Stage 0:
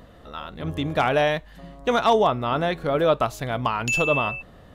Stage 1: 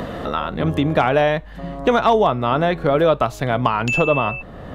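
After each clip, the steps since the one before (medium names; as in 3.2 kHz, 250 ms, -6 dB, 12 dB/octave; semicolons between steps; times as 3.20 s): treble shelf 3.6 kHz -10 dB; three bands compressed up and down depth 70%; trim +5 dB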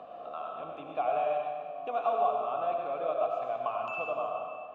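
vowel filter a; algorithmic reverb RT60 1.6 s, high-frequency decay 0.95×, pre-delay 50 ms, DRR 0 dB; trim -8.5 dB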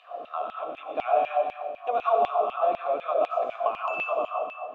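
LFO high-pass saw down 4 Hz 210–2900 Hz; trim +3.5 dB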